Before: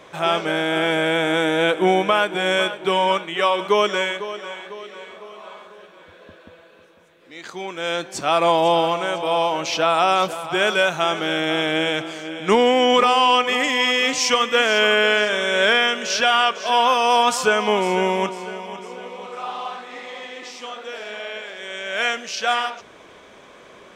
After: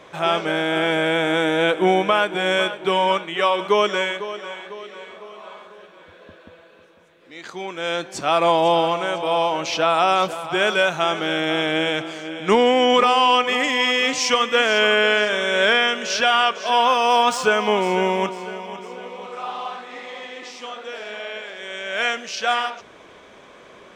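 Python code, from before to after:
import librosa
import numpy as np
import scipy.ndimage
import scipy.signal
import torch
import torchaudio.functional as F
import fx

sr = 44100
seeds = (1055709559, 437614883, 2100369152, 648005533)

y = fx.median_filter(x, sr, points=3, at=(16.82, 19.27))
y = fx.high_shelf(y, sr, hz=8200.0, db=-5.5)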